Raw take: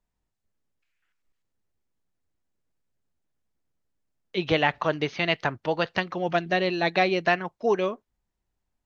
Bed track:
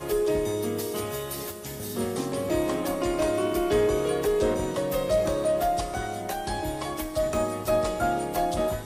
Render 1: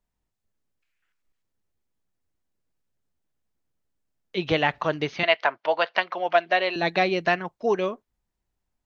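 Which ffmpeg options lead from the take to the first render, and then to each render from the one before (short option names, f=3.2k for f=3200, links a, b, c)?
-filter_complex "[0:a]asettb=1/sr,asplit=3[a][b][c];[a]atrim=end=5.234[d];[b]atrim=start=5.23:end=6.76,asetpts=PTS-STARTPTS,afade=t=in:d=0.004:c=qsin,afade=t=out:st=1.526:d=0.004:c=qsin,highpass=490,equalizer=f=650:t=q:w=4:g=8,equalizer=f=1k:t=q:w=4:g=6,equalizer=f=1.5k:t=q:w=4:g=4,equalizer=f=2.2k:t=q:w=4:g=5,equalizer=f=3.1k:t=q:w=4:g=3,lowpass=f=5.4k:w=0.5412,lowpass=f=5.4k:w=1.3066[e];[c]atrim=start=6.756[f];[d][e]acrossfade=d=0.004:c1=hsin:c2=qsin[g];[g][f]acrossfade=d=0.004:c1=qsin:c2=hsin"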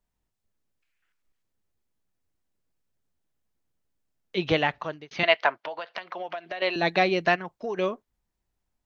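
-filter_complex "[0:a]asettb=1/sr,asplit=3[a][b][c];[a]atrim=end=5.634[d];[b]atrim=start=5.63:end=6.62,asetpts=PTS-STARTPTS,afade=t=in:d=0.004:c=qsin,afade=t=out:st=0.986:d=0.004:c=qsin,acompressor=threshold=-30dB:ratio=12:attack=3.2:release=140:knee=1:detection=peak[e];[c]atrim=start=6.616[f];[d][e]acrossfade=d=0.004:c1=hsin:c2=qsin[g];[g][f]acrossfade=d=0.004:c1=qsin:c2=hsin,asplit=3[h][i][j];[h]afade=t=out:st=7.35:d=0.02[k];[i]acompressor=threshold=-30dB:ratio=3:attack=3.2:release=140:knee=1:detection=peak,afade=t=in:st=7.35:d=0.02,afade=t=out:st=7.76:d=0.02[l];[j]afade=t=in:st=7.76:d=0.02[m];[k][l][m]amix=inputs=3:normalize=0,asplit=2[n][o];[n]atrim=end=5.11,asetpts=PTS-STARTPTS,afade=t=out:st=4.52:d=0.59[p];[o]atrim=start=5.11,asetpts=PTS-STARTPTS,afade=t=in:d=0.004:c=hsin[q];[p][q]concat=n=2:v=0:a=1"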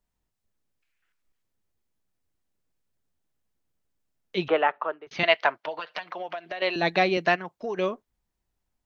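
-filter_complex "[0:a]asettb=1/sr,asplit=3[a][b][c];[a]atrim=end=4.484[d];[b]atrim=start=4.48:end=5.07,asetpts=PTS-STARTPTS,afade=t=in:d=0.004:c=qsin,afade=t=out:st=0.586:d=0.004:c=qsin,highpass=f=280:w=0.5412,highpass=f=280:w=1.3066,equalizer=f=280:t=q:w=4:g=-6,equalizer=f=410:t=q:w=4:g=4,equalizer=f=600:t=q:w=4:g=3,equalizer=f=900:t=q:w=4:g=4,equalizer=f=1.3k:t=q:w=4:g=9,equalizer=f=2.1k:t=q:w=4:g=-5,lowpass=f=2.5k:w=0.5412,lowpass=f=2.5k:w=1.3066[e];[c]atrim=start=5.066[f];[d][e]acrossfade=d=0.004:c1=hsin:c2=qsin[g];[g][f]acrossfade=d=0.004:c1=qsin:c2=hsin,asettb=1/sr,asplit=3[h][i][j];[h]atrim=end=5.674[k];[i]atrim=start=5.67:end=6.12,asetpts=PTS-STARTPTS,afade=t=in:d=0.004:c=qsin,afade=t=out:st=0.446:d=0.004:c=qsin,aecho=1:1:6.6:0.71,atrim=end_sample=19845[l];[j]atrim=start=6.116[m];[k][l]acrossfade=d=0.004:c1=hsin:c2=qsin[n];[n][m]acrossfade=d=0.004:c1=qsin:c2=hsin,asettb=1/sr,asplit=3[o][p][q];[o]atrim=end=7.174[r];[p]atrim=start=7.17:end=7.57,asetpts=PTS-STARTPTS,afade=t=in:d=0.004:c=qsin,afade=t=out:st=0.396:d=0.004:c=qsin,highpass=140[s];[q]atrim=start=7.566[t];[r][s]acrossfade=d=0.004:c1=hsin:c2=qsin[u];[u][t]acrossfade=d=0.004:c1=qsin:c2=hsin"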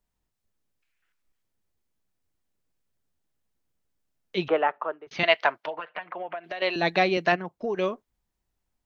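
-filter_complex "[0:a]asettb=1/sr,asplit=3[a][b][c];[a]atrim=end=4.494[d];[b]atrim=start=4.49:end=5.08,asetpts=PTS-STARTPTS,afade=t=in:d=0.004:c=qsin,afade=t=out:st=0.586:d=0.004:c=qsin,highshelf=f=2.8k:g=-10.5[e];[c]atrim=start=5.076[f];[d][e]acrossfade=d=0.004:c1=hsin:c2=qsin[g];[g][f]acrossfade=d=0.004:c1=qsin:c2=hsin,asettb=1/sr,asplit=3[h][i][j];[h]atrim=end=5.704[k];[i]atrim=start=5.7:end=6.44,asetpts=PTS-STARTPTS,afade=t=in:d=0.004:c=qsin,afade=t=out:st=0.736:d=0.004:c=qsin,lowpass=f=2.5k:w=0.5412,lowpass=f=2.5k:w=1.3066[l];[j]atrim=start=6.436[m];[k][l]acrossfade=d=0.004:c1=hsin:c2=qsin[n];[n][m]acrossfade=d=0.004:c1=qsin:c2=hsin,asettb=1/sr,asplit=3[o][p][q];[o]atrim=end=7.324[r];[p]atrim=start=7.32:end=7.75,asetpts=PTS-STARTPTS,afade=t=in:d=0.004:c=qsin,afade=t=out:st=0.426:d=0.004:c=qsin,tiltshelf=f=810:g=5[s];[q]atrim=start=7.746[t];[r][s]acrossfade=d=0.004:c1=hsin:c2=qsin[u];[u][t]acrossfade=d=0.004:c1=qsin:c2=hsin"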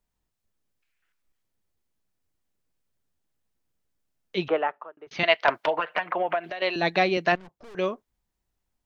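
-filter_complex "[0:a]asettb=1/sr,asplit=3[a][b][c];[a]atrim=end=5.484[d];[b]atrim=start=5.48:end=6.5,asetpts=PTS-STARTPTS,afade=t=in:d=0.004:c=qsin,afade=t=out:st=1.016:d=0.004:c=qsin,aeval=exprs='0.299*sin(PI/2*1.78*val(0)/0.299)':c=same[e];[c]atrim=start=6.496[f];[d][e]acrossfade=d=0.004:c1=hsin:c2=qsin[g];[g][f]acrossfade=d=0.004:c1=qsin:c2=hsin,asettb=1/sr,asplit=3[h][i][j];[h]atrim=end=7.354[k];[i]atrim=start=7.35:end=7.75,asetpts=PTS-STARTPTS,afade=t=in:d=0.004:c=qsin,afade=t=out:st=0.396:d=0.004:c=qsin,aeval=exprs='(tanh(178*val(0)+0.8)-tanh(0.8))/178':c=same[l];[j]atrim=start=7.746[m];[k][l]acrossfade=d=0.004:c1=hsin:c2=qsin[n];[n][m]acrossfade=d=0.004:c1=qsin:c2=hsin,asplit=2[o][p];[o]atrim=end=4.97,asetpts=PTS-STARTPTS,afade=t=out:st=4.37:d=0.6:c=qsin[q];[p]atrim=start=4.97,asetpts=PTS-STARTPTS,afade=t=in:d=0.004:c=hsin[r];[q][r]concat=n=2:v=0:a=1"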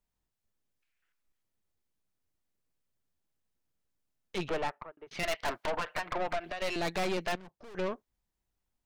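-af "aeval=exprs='(tanh(28.2*val(0)+0.75)-tanh(0.75))/28.2':c=same"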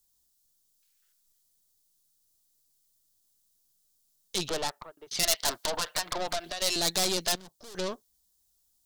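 -af "aexciter=amount=6.5:drive=6:freq=3.5k"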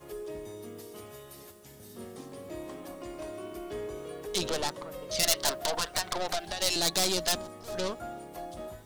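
-filter_complex "[1:a]volume=-15dB[a];[0:a][a]amix=inputs=2:normalize=0"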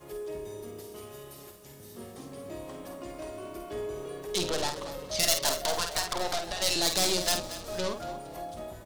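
-filter_complex "[0:a]asplit=2[a][b];[b]adelay=50,volume=-7dB[c];[a][c]amix=inputs=2:normalize=0,asplit=5[d][e][f][g][h];[e]adelay=231,afreqshift=-31,volume=-13dB[i];[f]adelay=462,afreqshift=-62,volume=-21.9dB[j];[g]adelay=693,afreqshift=-93,volume=-30.7dB[k];[h]adelay=924,afreqshift=-124,volume=-39.6dB[l];[d][i][j][k][l]amix=inputs=5:normalize=0"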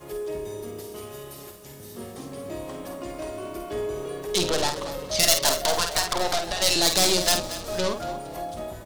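-af "volume=6dB"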